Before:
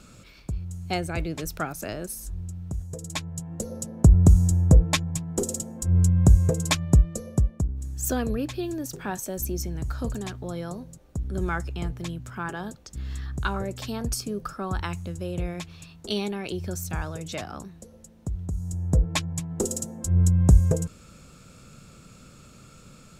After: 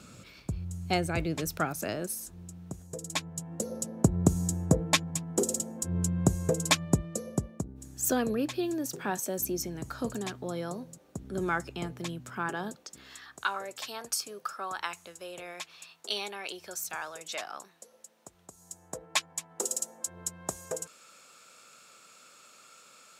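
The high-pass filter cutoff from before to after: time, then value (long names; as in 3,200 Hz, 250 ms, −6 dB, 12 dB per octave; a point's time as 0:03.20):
0:01.74 85 Hz
0:02.22 200 Hz
0:12.67 200 Hz
0:13.20 720 Hz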